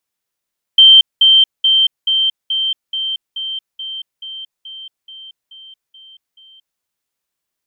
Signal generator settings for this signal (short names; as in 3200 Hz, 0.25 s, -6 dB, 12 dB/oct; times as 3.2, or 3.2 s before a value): level ladder 3130 Hz -2.5 dBFS, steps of -3 dB, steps 14, 0.23 s 0.20 s